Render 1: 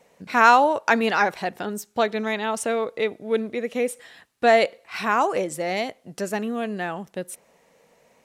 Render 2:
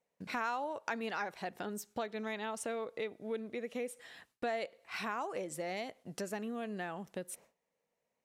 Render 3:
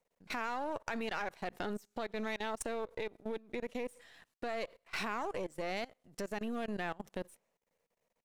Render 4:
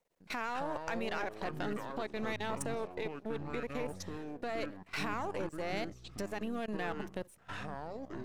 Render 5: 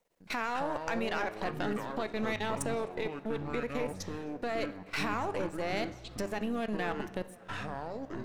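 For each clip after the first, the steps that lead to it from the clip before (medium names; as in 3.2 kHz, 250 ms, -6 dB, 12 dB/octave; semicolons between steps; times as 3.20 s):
gate with hold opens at -45 dBFS; compression 3:1, threshold -33 dBFS, peak gain reduction 17.5 dB; trim -5.5 dB
partial rectifier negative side -7 dB; level held to a coarse grid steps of 22 dB; trim +7 dB
ever faster or slower copies 96 ms, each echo -7 st, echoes 3, each echo -6 dB
tape echo 258 ms, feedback 82%, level -24 dB, low-pass 2.8 kHz; on a send at -11.5 dB: reverberation, pre-delay 3 ms; on the sum: trim +3.5 dB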